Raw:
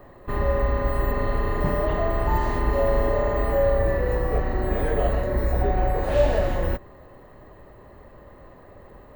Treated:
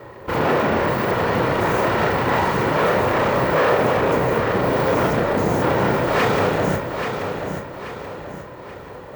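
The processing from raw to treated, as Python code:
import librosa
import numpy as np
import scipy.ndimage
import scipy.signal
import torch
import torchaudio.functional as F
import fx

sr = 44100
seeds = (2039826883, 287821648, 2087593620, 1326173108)

p1 = fx.lower_of_two(x, sr, delay_ms=2.1)
p2 = fx.rider(p1, sr, range_db=4, speed_s=2.0)
p3 = p1 + (p2 * librosa.db_to_amplitude(1.0))
p4 = fx.bass_treble(p3, sr, bass_db=6, treble_db=7)
p5 = 10.0 ** (-14.5 / 20.0) * (np.abs((p4 / 10.0 ** (-14.5 / 20.0) + 3.0) % 4.0 - 2.0) - 1.0)
p6 = scipy.signal.sosfilt(scipy.signal.bessel(2, 180.0, 'highpass', norm='mag', fs=sr, output='sos'), p5)
p7 = fx.high_shelf(p6, sr, hz=4300.0, db=-11.5)
p8 = fx.doubler(p7, sr, ms=32.0, db=-7)
p9 = fx.echo_feedback(p8, sr, ms=832, feedback_pct=41, wet_db=-7)
y = p9 * librosa.db_to_amplitude(2.5)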